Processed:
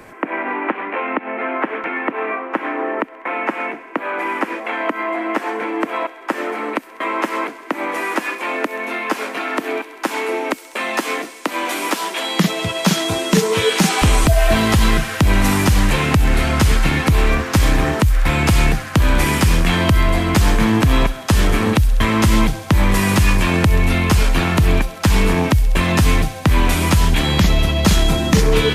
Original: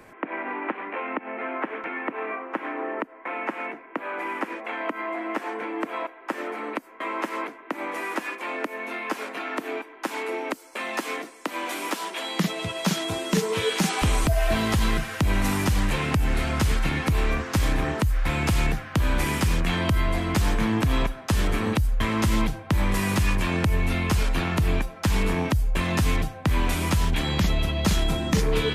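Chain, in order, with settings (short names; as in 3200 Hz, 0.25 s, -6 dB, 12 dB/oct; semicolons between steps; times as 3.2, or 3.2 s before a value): thin delay 66 ms, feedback 83%, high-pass 3600 Hz, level -13 dB; gain +8.5 dB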